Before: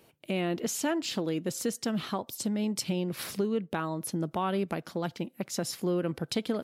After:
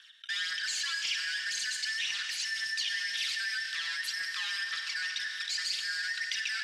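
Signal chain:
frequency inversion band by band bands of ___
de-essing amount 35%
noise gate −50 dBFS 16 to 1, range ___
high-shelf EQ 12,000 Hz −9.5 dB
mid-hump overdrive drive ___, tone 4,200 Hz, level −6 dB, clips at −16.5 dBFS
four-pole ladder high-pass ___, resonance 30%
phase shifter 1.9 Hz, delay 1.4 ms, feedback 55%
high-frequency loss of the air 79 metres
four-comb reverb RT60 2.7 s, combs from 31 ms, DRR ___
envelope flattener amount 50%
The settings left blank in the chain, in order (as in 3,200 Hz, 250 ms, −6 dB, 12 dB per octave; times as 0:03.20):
2,000 Hz, −27 dB, 28 dB, 2,400 Hz, 6.5 dB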